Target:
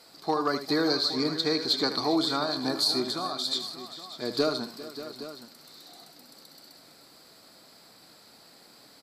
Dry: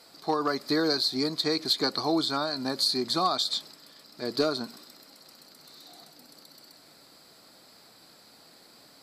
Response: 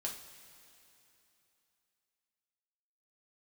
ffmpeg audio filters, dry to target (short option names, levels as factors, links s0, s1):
-filter_complex "[0:a]asettb=1/sr,asplit=3[s0][s1][s2];[s0]atrim=end=0.904[s3];[s1]atrim=start=0.9:end=1.87,asetpts=PTS-STARTPTS,afade=t=in:d=0.004:c=qsin,afade=t=out:st=0.966:d=0.004:c=qsin,equalizer=f=11000:t=o:w=0.69:g=-9[s4];[s2]atrim=start=1.866[s5];[s3][s4]acrossfade=d=0.004:c1=hsin:c2=qsin[s6];[s6][s5]acrossfade=d=0.004:c1=qsin:c2=hsin,asettb=1/sr,asplit=3[s7][s8][s9];[s7]atrim=end=3.034[s10];[s8]atrim=start=3.03:end=3.44,asetpts=PTS-STARTPTS,afade=t=in:d=0.004:c=qsin,afade=t=out:st=0.406:d=0.004:c=qsin,acompressor=threshold=0.0316:ratio=6[s11];[s9]atrim=start=3.436[s12];[s10][s11]acrossfade=d=0.004:c1=hsin:c2=qsin[s13];[s13][s12]acrossfade=d=0.004:c1=qsin:c2=hsin,aecho=1:1:77|400|584|817:0.299|0.141|0.2|0.188"